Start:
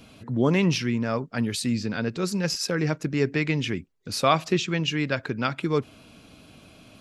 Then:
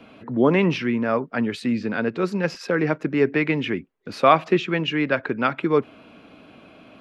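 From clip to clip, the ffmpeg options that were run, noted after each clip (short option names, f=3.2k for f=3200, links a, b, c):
-filter_complex "[0:a]acrossover=split=200 2900:gain=0.2 1 0.0794[a][b][c];[a][b][c]amix=inputs=3:normalize=0,volume=6dB"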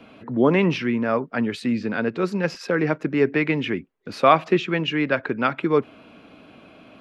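-af anull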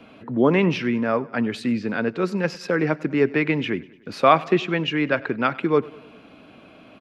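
-af "aecho=1:1:99|198|297|396:0.0794|0.0453|0.0258|0.0147"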